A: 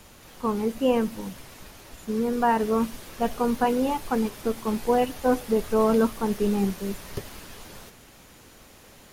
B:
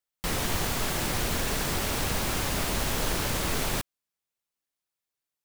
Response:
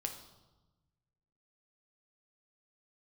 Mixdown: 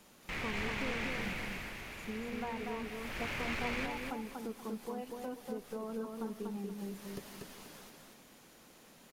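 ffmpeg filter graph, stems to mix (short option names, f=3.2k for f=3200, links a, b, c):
-filter_complex "[0:a]lowshelf=f=130:t=q:w=1.5:g=-9,acompressor=threshold=-29dB:ratio=8,volume=-10dB,asplit=2[a][b];[b]volume=-3.5dB[c];[1:a]lowpass=f=2.3k:t=q:w=3.7,aemphasis=mode=production:type=cd,asoftclip=type=hard:threshold=-23.5dB,adelay=50,volume=-2dB,afade=t=out:st=0.98:d=0.75:silence=0.334965,afade=t=in:st=2.99:d=0.26:silence=0.334965,asplit=2[d][e];[e]volume=-4.5dB[f];[c][f]amix=inputs=2:normalize=0,aecho=0:1:240|480|720|960:1|0.28|0.0784|0.022[g];[a][d][g]amix=inputs=3:normalize=0"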